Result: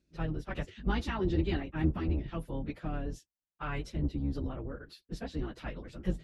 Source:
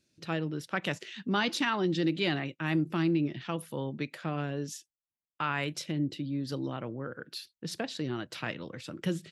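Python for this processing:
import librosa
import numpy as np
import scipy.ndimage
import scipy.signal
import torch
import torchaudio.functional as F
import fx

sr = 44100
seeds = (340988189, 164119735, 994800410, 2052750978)

y = fx.octave_divider(x, sr, octaves=2, level_db=2.0)
y = fx.stretch_vocoder_free(y, sr, factor=0.67)
y = fx.high_shelf(y, sr, hz=2100.0, db=-10.0)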